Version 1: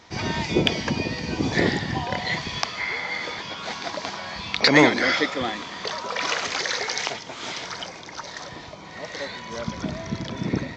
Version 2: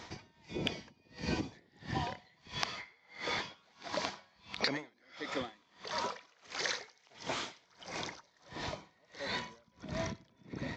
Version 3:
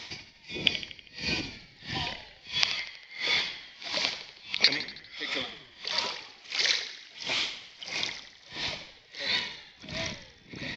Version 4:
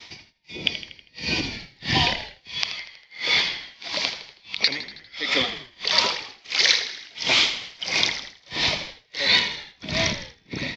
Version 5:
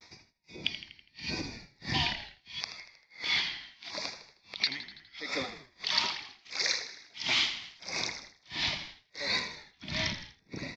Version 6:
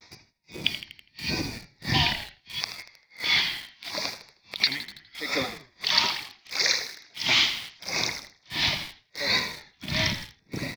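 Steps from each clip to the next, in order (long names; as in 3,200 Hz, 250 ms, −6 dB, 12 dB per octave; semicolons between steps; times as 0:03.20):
downward compressor 12 to 1, threshold −31 dBFS, peak gain reduction 21 dB; tremolo with a sine in dB 1.5 Hz, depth 35 dB; level +2 dB
flat-topped bell 3,400 Hz +13.5 dB; on a send: echo with shifted repeats 80 ms, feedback 57%, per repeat −45 Hz, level −12 dB; on the sum: level −1 dB
downward expander −45 dBFS; automatic gain control gain up to 14 dB; level −1 dB
auto-filter notch square 0.77 Hz 510–3,000 Hz; pitch vibrato 0.77 Hz 52 cents; level −8.5 dB
parametric band 120 Hz +3 dB 0.77 octaves; in parallel at −5 dB: bit reduction 7 bits; on the sum: level +2.5 dB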